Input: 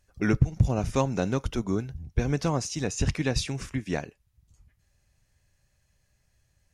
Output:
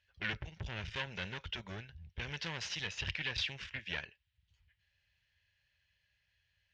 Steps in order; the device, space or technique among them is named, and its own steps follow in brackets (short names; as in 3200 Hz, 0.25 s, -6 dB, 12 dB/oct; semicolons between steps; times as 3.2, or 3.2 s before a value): 2.23–2.89 high shelf 4100 Hz +6 dB; scooped metal amplifier (tube stage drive 27 dB, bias 0.7; speaker cabinet 95–3800 Hz, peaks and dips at 130 Hz -7 dB, 340 Hz +6 dB, 720 Hz -7 dB, 1200 Hz -9 dB, 1700 Hz +4 dB, 3000 Hz +6 dB; passive tone stack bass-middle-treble 10-0-10); gain +7 dB